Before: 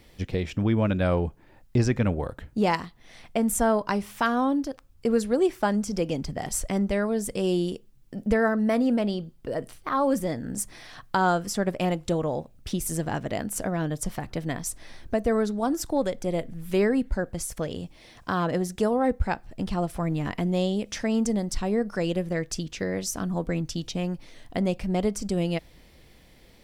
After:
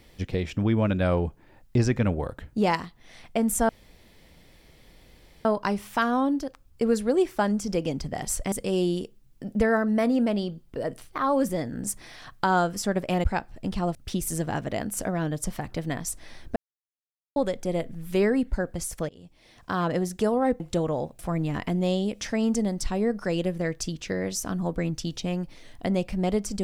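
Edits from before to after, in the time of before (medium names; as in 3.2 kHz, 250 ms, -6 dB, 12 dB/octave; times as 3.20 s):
3.69 s: insert room tone 1.76 s
6.76–7.23 s: delete
11.95–12.54 s: swap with 19.19–19.90 s
15.15–15.95 s: mute
17.68–18.43 s: fade in, from -23.5 dB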